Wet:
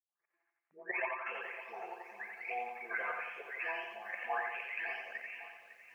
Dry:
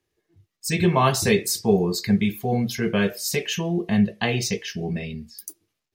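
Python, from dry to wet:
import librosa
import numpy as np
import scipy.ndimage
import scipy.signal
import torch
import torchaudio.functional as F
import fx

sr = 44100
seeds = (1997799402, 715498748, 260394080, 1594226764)

p1 = fx.spec_delay(x, sr, highs='late', ms=776)
p2 = fx.level_steps(p1, sr, step_db=16)
p3 = scipy.signal.sosfilt(scipy.signal.butter(4, 800.0, 'highpass', fs=sr, output='sos'), p2)
p4 = fx.over_compress(p3, sr, threshold_db=-40.0, ratio=-0.5)
p5 = scipy.signal.sosfilt(scipy.signal.ellip(4, 1.0, 40, 2400.0, 'lowpass', fs=sr, output='sos'), p4)
p6 = p5 + fx.echo_feedback(p5, sr, ms=88, feedback_pct=52, wet_db=-4.5, dry=0)
p7 = fx.echo_crushed(p6, sr, ms=554, feedback_pct=55, bits=11, wet_db=-14)
y = p7 * librosa.db_to_amplitude(4.0)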